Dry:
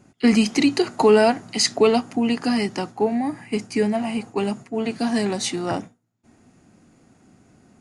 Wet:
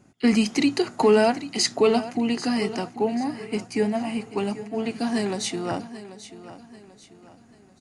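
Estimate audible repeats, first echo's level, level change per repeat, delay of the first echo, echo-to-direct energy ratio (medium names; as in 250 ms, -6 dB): 3, -14.5 dB, -8.0 dB, 788 ms, -14.0 dB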